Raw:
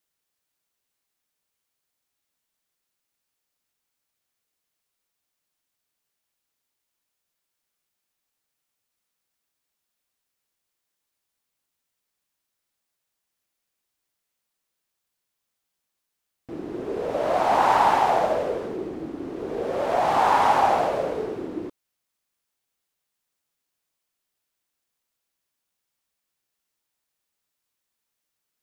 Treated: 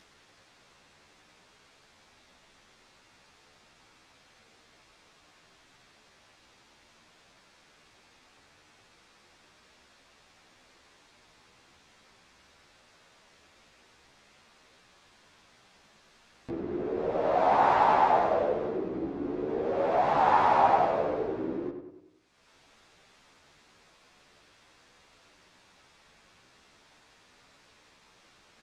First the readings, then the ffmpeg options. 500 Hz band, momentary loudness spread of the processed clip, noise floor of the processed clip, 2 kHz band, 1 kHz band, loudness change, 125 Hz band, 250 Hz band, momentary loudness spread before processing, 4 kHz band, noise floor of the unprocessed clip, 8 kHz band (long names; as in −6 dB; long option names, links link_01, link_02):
−2.5 dB, 13 LU, −62 dBFS, −4.0 dB, −3.0 dB, −4.0 dB, −2.0 dB, −1.5 dB, 15 LU, −7.0 dB, −82 dBFS, below −10 dB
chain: -filter_complex "[0:a]lowpass=6800,aemphasis=mode=reproduction:type=50fm,asplit=2[link_01][link_02];[link_02]acompressor=mode=upward:threshold=-22dB:ratio=2.5,volume=0.5dB[link_03];[link_01][link_03]amix=inputs=2:normalize=0,bandreject=frequency=3000:width=27,asplit=2[link_04][link_05];[link_05]adelay=97,lowpass=frequency=2900:poles=1,volume=-7dB,asplit=2[link_06][link_07];[link_07]adelay=97,lowpass=frequency=2900:poles=1,volume=0.52,asplit=2[link_08][link_09];[link_09]adelay=97,lowpass=frequency=2900:poles=1,volume=0.52,asplit=2[link_10][link_11];[link_11]adelay=97,lowpass=frequency=2900:poles=1,volume=0.52,asplit=2[link_12][link_13];[link_13]adelay=97,lowpass=frequency=2900:poles=1,volume=0.52,asplit=2[link_14][link_15];[link_15]adelay=97,lowpass=frequency=2900:poles=1,volume=0.52[link_16];[link_06][link_08][link_10][link_12][link_14][link_16]amix=inputs=6:normalize=0[link_17];[link_04][link_17]amix=inputs=2:normalize=0,asplit=2[link_18][link_19];[link_19]adelay=11.9,afreqshift=1.2[link_20];[link_18][link_20]amix=inputs=2:normalize=1,volume=-7.5dB"